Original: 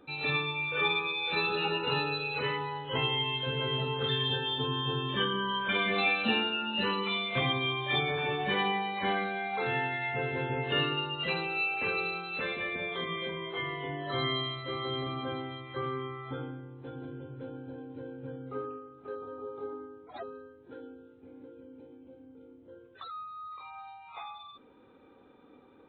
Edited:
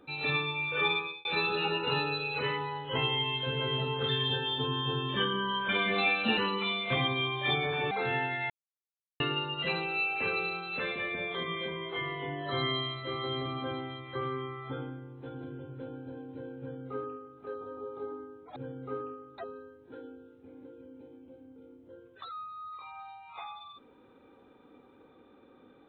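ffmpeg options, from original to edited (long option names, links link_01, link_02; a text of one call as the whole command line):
ffmpeg -i in.wav -filter_complex "[0:a]asplit=8[link_01][link_02][link_03][link_04][link_05][link_06][link_07][link_08];[link_01]atrim=end=1.25,asetpts=PTS-STARTPTS,afade=type=out:start_time=0.94:duration=0.31[link_09];[link_02]atrim=start=1.25:end=6.372,asetpts=PTS-STARTPTS,afade=type=in:duration=0.004:curve=hsin[link_10];[link_03]atrim=start=6.818:end=8.362[link_11];[link_04]atrim=start=9.518:end=10.11,asetpts=PTS-STARTPTS,afade=type=out:start_time=0.588:duration=0.004:curve=hsin[link_12];[link_05]atrim=start=10.11:end=10.81,asetpts=PTS-STARTPTS,volume=0[link_13];[link_06]atrim=start=10.81:end=20.172,asetpts=PTS-STARTPTS,afade=type=in:duration=0.004:curve=hsin[link_14];[link_07]atrim=start=18.198:end=19.022[link_15];[link_08]atrim=start=20.168[link_16];[link_09][link_10]concat=n=2:v=0:a=1[link_17];[link_17][link_11]acrossfade=duration=0.004:curve1=hsin:curve2=hsin[link_18];[link_12][link_13][link_14]concat=n=3:v=0:a=1[link_19];[link_18][link_19]acrossfade=duration=0.004:curve1=hsin:curve2=hsin[link_20];[link_20][link_15]acrossfade=duration=0.004:curve1=hsin:curve2=hsin[link_21];[link_21][link_16]acrossfade=duration=0.004:curve1=hsin:curve2=hsin" out.wav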